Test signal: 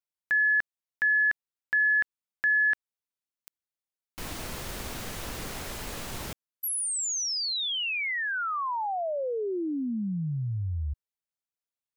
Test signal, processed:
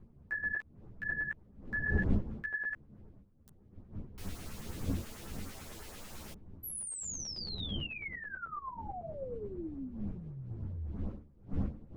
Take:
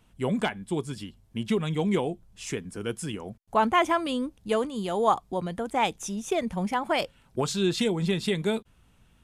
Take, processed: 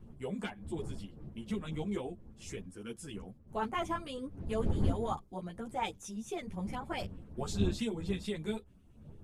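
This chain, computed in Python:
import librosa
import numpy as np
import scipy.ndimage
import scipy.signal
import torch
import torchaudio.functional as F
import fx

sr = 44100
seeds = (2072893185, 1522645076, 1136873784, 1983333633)

y = fx.dmg_wind(x, sr, seeds[0], corner_hz=170.0, level_db=-31.0)
y = fx.filter_lfo_notch(y, sr, shape='saw_up', hz=9.1, low_hz=510.0, high_hz=5100.0, q=1.3)
y = fx.ensemble(y, sr)
y = y * 10.0 ** (-7.5 / 20.0)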